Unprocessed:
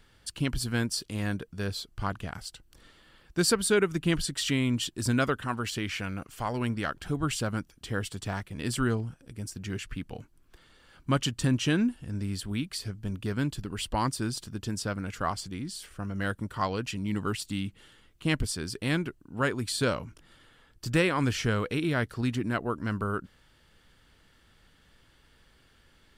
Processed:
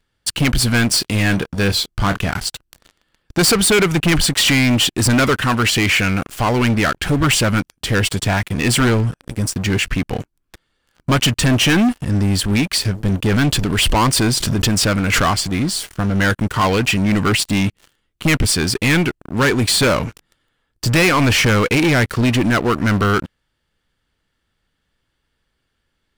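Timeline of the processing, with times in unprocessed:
0:00.87–0:02.37: double-tracking delay 26 ms −13 dB
0:13.28–0:15.31: background raised ahead of every attack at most 52 dB per second
whole clip: dynamic equaliser 2,300 Hz, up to +7 dB, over −49 dBFS, Q 1.6; leveller curve on the samples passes 5

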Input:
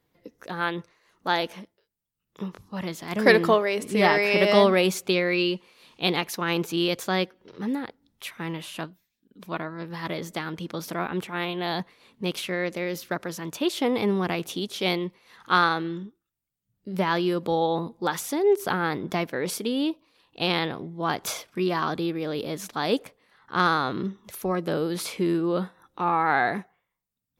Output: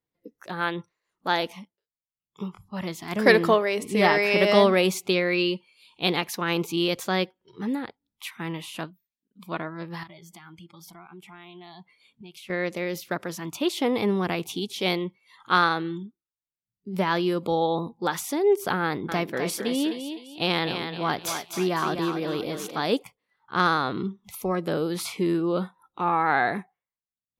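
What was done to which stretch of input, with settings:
0:10.03–0:12.50: downward compressor 5 to 1, threshold −43 dBFS
0:18.83–0:22.81: feedback echo with a high-pass in the loop 255 ms, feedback 42%, high-pass 280 Hz, level −6.5 dB
whole clip: noise reduction from a noise print of the clip's start 17 dB

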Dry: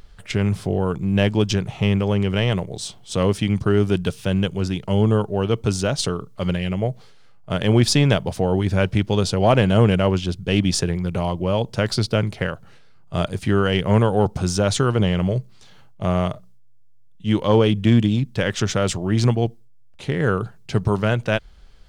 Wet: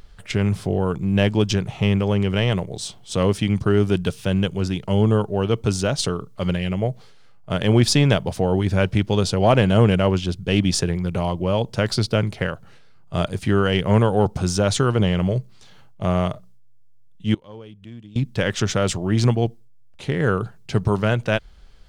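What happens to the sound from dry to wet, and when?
0:17.34–0:18.16: gate with flip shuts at −18 dBFS, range −24 dB

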